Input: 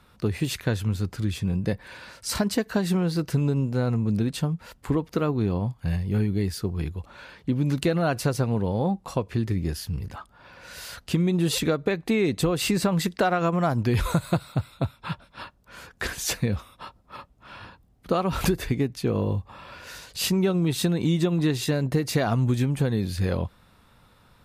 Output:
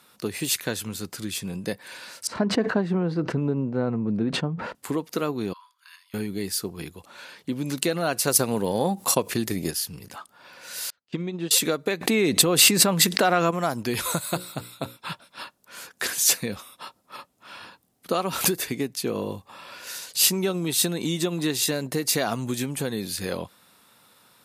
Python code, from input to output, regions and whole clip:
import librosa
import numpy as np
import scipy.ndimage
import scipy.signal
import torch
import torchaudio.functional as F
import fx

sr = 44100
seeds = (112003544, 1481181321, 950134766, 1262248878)

y = fx.chain(x, sr, fx.lowpass(hz=1500.0, slope=12),
    fx.low_shelf(hz=460.0, db=5.0),
    fx.sustainer(db_per_s=82.0), at=(2.27, 4.75))
y = fx.chain(y, sr, fx.cheby_ripple_highpass(hz=970.0, ripple_db=6),
    fx.high_shelf(hz=2100.0, db=-8.5),
    fx.notch(hz=7700.0, q=7.8), at=(5.53, 6.14))
y = fx.chain(y, sr, fx.high_shelf(hz=8800.0, db=10.5),
    fx.transient(attack_db=5, sustain_db=-8),
    fx.env_flatten(amount_pct=50), at=(8.27, 9.71))
y = fx.chain(y, sr, fx.air_absorb(metres=180.0),
    fx.upward_expand(threshold_db=-39.0, expansion=2.5), at=(10.9, 11.51))
y = fx.chain(y, sr, fx.bass_treble(bass_db=3, treble_db=-4),
    fx.env_flatten(amount_pct=70), at=(12.01, 13.51))
y = fx.chain(y, sr, fx.high_shelf(hz=12000.0, db=4.0),
    fx.hum_notches(base_hz=60, count=9), at=(14.2, 14.97))
y = scipy.signal.sosfilt(scipy.signal.butter(2, 220.0, 'highpass', fs=sr, output='sos'), y)
y = fx.peak_eq(y, sr, hz=12000.0, db=13.5, octaves=2.2)
y = F.gain(torch.from_numpy(y), -1.0).numpy()